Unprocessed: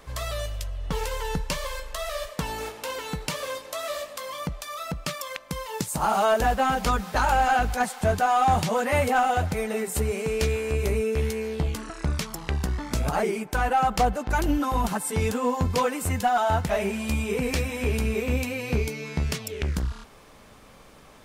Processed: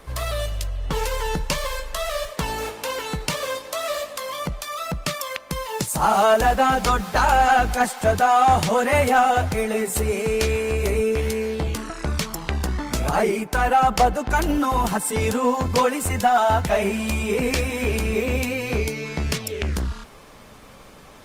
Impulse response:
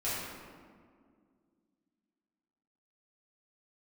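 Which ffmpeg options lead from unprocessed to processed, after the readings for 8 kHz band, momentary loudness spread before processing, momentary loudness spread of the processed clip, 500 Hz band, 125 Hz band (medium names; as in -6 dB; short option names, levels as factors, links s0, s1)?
+5.0 dB, 11 LU, 11 LU, +5.0 dB, +2.0 dB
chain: -filter_complex "[0:a]acrossover=split=330|3000[s0][s1][s2];[s0]asoftclip=type=hard:threshold=0.0422[s3];[s3][s1][s2]amix=inputs=3:normalize=0,volume=1.78" -ar 48000 -c:a libopus -b:a 32k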